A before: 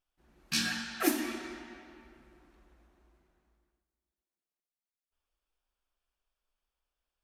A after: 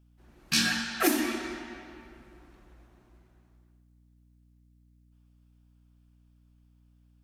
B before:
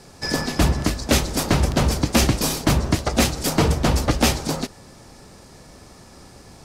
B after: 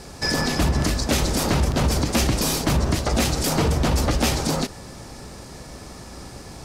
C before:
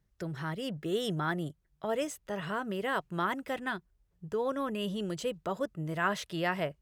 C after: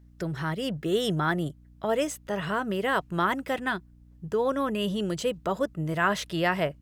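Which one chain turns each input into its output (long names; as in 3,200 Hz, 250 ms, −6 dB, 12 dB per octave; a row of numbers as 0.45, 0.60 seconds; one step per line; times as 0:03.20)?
brickwall limiter −18 dBFS
mains hum 60 Hz, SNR 25 dB
normalise the peak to −12 dBFS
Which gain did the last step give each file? +6.0, +5.5, +6.0 decibels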